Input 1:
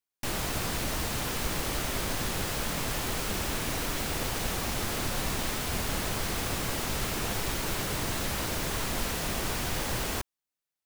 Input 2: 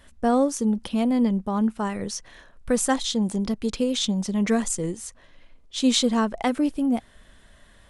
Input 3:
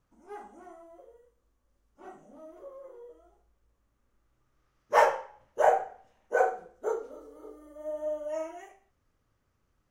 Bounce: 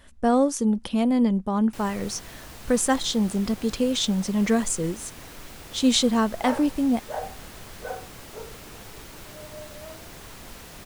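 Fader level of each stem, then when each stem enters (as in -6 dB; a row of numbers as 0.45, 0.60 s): -11.5, +0.5, -10.0 dB; 1.50, 0.00, 1.50 s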